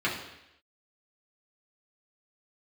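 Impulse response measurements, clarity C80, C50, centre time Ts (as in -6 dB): 8.5 dB, 5.5 dB, 36 ms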